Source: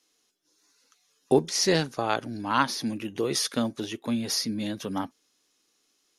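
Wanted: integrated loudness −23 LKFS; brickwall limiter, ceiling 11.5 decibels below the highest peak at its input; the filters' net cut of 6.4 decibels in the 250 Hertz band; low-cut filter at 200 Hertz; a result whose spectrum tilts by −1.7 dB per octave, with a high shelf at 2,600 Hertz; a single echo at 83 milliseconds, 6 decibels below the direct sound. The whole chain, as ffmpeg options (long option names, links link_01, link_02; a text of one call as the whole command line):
ffmpeg -i in.wav -af "highpass=200,equalizer=frequency=250:width_type=o:gain=-6.5,highshelf=frequency=2600:gain=6,alimiter=limit=-18.5dB:level=0:latency=1,aecho=1:1:83:0.501,volume=7dB" out.wav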